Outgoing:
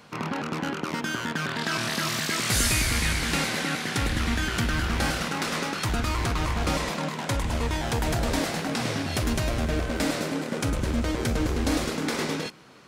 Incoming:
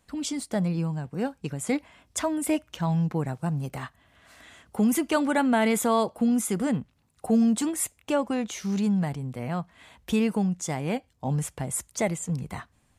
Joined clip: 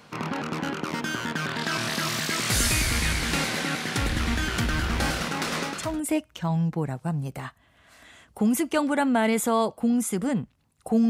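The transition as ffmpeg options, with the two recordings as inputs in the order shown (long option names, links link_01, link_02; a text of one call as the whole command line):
ffmpeg -i cue0.wav -i cue1.wav -filter_complex "[0:a]apad=whole_dur=11.09,atrim=end=11.09,atrim=end=6.02,asetpts=PTS-STARTPTS[link_01];[1:a]atrim=start=2:end=7.47,asetpts=PTS-STARTPTS[link_02];[link_01][link_02]acrossfade=duration=0.4:curve1=tri:curve2=tri" out.wav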